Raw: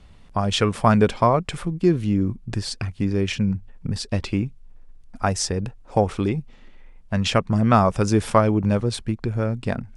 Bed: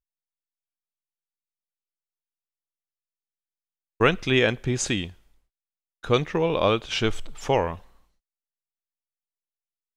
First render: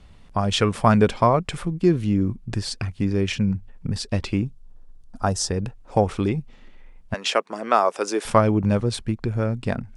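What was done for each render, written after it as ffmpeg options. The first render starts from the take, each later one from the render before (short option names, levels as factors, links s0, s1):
-filter_complex "[0:a]asettb=1/sr,asplit=3[s0][s1][s2];[s0]atrim=end=4.414[s3];[s1]atrim=start=4.41:end=5.5,asetpts=PTS-STARTPTS,afade=t=in:d=0.004:c=qsin,afade=t=out:st=1.086:d=0.004:c=qsin,equalizer=f=2200:w=2.6:g=-13.5[s4];[s2]atrim=start=5.496[s5];[s3][s4]acrossfade=d=0.004:c1=hsin:c2=qsin[s6];[s6][s5]acrossfade=d=0.004:c1=qsin:c2=hsin,asettb=1/sr,asplit=3[s7][s8][s9];[s7]atrim=end=7.144[s10];[s8]atrim=start=7.14:end=8.25,asetpts=PTS-STARTPTS,afade=t=in:d=0.004:c=qsin,afade=t=out:st=1.106:d=0.004:c=qsin,highpass=f=350:w=0.5412,highpass=f=350:w=1.3066[s11];[s9]atrim=start=8.246[s12];[s10][s11]acrossfade=d=0.004:c1=hsin:c2=qsin[s13];[s13][s12]acrossfade=d=0.004:c1=qsin:c2=hsin"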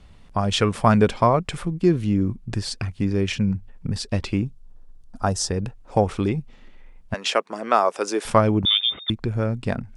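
-filter_complex "[0:a]asettb=1/sr,asplit=3[s0][s1][s2];[s0]atrim=end=8.654[s3];[s1]atrim=start=8.65:end=9.1,asetpts=PTS-STARTPTS,afade=t=in:d=0.004:c=qsin,afade=t=out:st=0.446:d=0.004:c=qsin,lowpass=f=3100:t=q:w=0.5098,lowpass=f=3100:t=q:w=0.6013,lowpass=f=3100:t=q:w=0.9,lowpass=f=3100:t=q:w=2.563,afreqshift=-3700[s4];[s2]atrim=start=9.096[s5];[s3][s4]acrossfade=d=0.004:c1=hsin:c2=qsin[s6];[s6][s5]acrossfade=d=0.004:c1=qsin:c2=hsin"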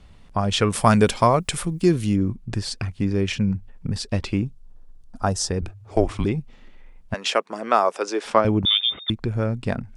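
-filter_complex "[0:a]asettb=1/sr,asplit=3[s0][s1][s2];[s0]atrim=end=0.704[s3];[s1]atrim=start=0.7:end=2.16,asetpts=PTS-STARTPTS,afade=t=in:d=0.004:c=qsin,afade=t=out:st=1.456:d=0.004:c=qsin,aemphasis=mode=production:type=75kf[s4];[s2]atrim=start=2.156[s5];[s3][s4]acrossfade=d=0.004:c1=hsin:c2=qsin[s6];[s6][s5]acrossfade=d=0.004:c1=qsin:c2=hsin,asettb=1/sr,asplit=3[s7][s8][s9];[s7]atrim=end=5.614[s10];[s8]atrim=start=5.61:end=6.25,asetpts=PTS-STARTPTS,afade=t=in:d=0.004:c=qsin,afade=t=out:st=0.636:d=0.004:c=qsin,afreqshift=-120[s11];[s9]atrim=start=6.246[s12];[s10][s11]acrossfade=d=0.004:c1=hsin:c2=qsin[s13];[s13][s12]acrossfade=d=0.004:c1=qsin:c2=hsin,asettb=1/sr,asplit=3[s14][s15][s16];[s14]atrim=end=7.984[s17];[s15]atrim=start=7.98:end=8.45,asetpts=PTS-STARTPTS,afade=t=in:d=0.004:c=qsin,afade=t=out:st=0.466:d=0.004:c=qsin,acrossover=split=220 7100:gain=0.0708 1 0.158[s18][s19][s20];[s18][s19][s20]amix=inputs=3:normalize=0[s21];[s16]atrim=start=8.446[s22];[s17][s21]acrossfade=d=0.004:c1=hsin:c2=qsin[s23];[s23][s22]acrossfade=d=0.004:c1=qsin:c2=hsin"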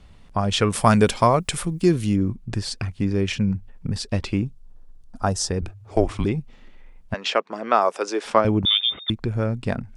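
-filter_complex "[0:a]asettb=1/sr,asplit=3[s0][s1][s2];[s0]atrim=end=7.134[s3];[s1]atrim=start=7.13:end=7.82,asetpts=PTS-STARTPTS,afade=t=in:d=0.004:c=qsin,afade=t=out:st=0.686:d=0.004:c=qsin,lowpass=5100[s4];[s2]atrim=start=7.816[s5];[s3][s4]acrossfade=d=0.004:c1=hsin:c2=qsin[s6];[s6][s5]acrossfade=d=0.004:c1=qsin:c2=hsin"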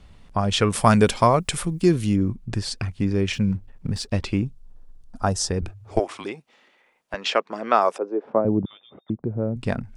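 -filter_complex "[0:a]asettb=1/sr,asplit=3[s0][s1][s2];[s0]atrim=end=3.334[s3];[s1]atrim=start=3.33:end=4.13,asetpts=PTS-STARTPTS,afade=t=in:d=0.004:c=qsin,afade=t=out:st=0.796:d=0.004:c=qsin,aeval=exprs='sgn(val(0))*max(abs(val(0))-0.00188,0)':c=same[s4];[s2]atrim=start=4.126[s5];[s3][s4]acrossfade=d=0.004:c1=hsin:c2=qsin[s6];[s6][s5]acrossfade=d=0.004:c1=qsin:c2=hsin,asettb=1/sr,asplit=3[s7][s8][s9];[s7]atrim=end=5.994[s10];[s8]atrim=start=5.99:end=7.14,asetpts=PTS-STARTPTS,afade=t=in:d=0.004:c=qsin,afade=t=out:st=1.146:d=0.004:c=qsin,highpass=500[s11];[s9]atrim=start=7.136[s12];[s10][s11]acrossfade=d=0.004:c1=hsin:c2=qsin[s13];[s13][s12]acrossfade=d=0.004:c1=qsin:c2=hsin,asettb=1/sr,asplit=3[s14][s15][s16];[s14]atrim=end=7.984[s17];[s15]atrim=start=7.98:end=9.56,asetpts=PTS-STARTPTS,afade=t=in:d=0.004:c=qsin,afade=t=out:st=1.576:d=0.004:c=qsin,asuperpass=centerf=290:order=4:qfactor=0.51[s18];[s16]atrim=start=9.556[s19];[s17][s18]acrossfade=d=0.004:c1=hsin:c2=qsin[s20];[s20][s19]acrossfade=d=0.004:c1=qsin:c2=hsin"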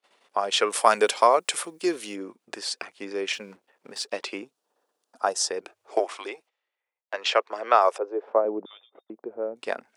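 -af "agate=range=0.0562:threshold=0.00447:ratio=16:detection=peak,highpass=f=410:w=0.5412,highpass=f=410:w=1.3066"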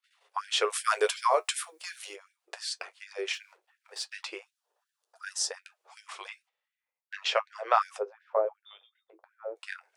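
-af "flanger=delay=9.3:depth=1.4:regen=-50:speed=0.26:shape=sinusoidal,afftfilt=real='re*gte(b*sr/1024,320*pow(1500/320,0.5+0.5*sin(2*PI*2.7*pts/sr)))':imag='im*gte(b*sr/1024,320*pow(1500/320,0.5+0.5*sin(2*PI*2.7*pts/sr)))':win_size=1024:overlap=0.75"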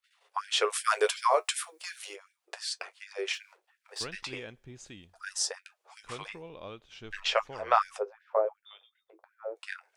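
-filter_complex "[1:a]volume=0.075[s0];[0:a][s0]amix=inputs=2:normalize=0"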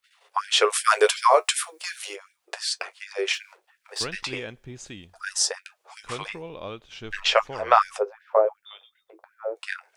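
-af "volume=2.37,alimiter=limit=0.794:level=0:latency=1"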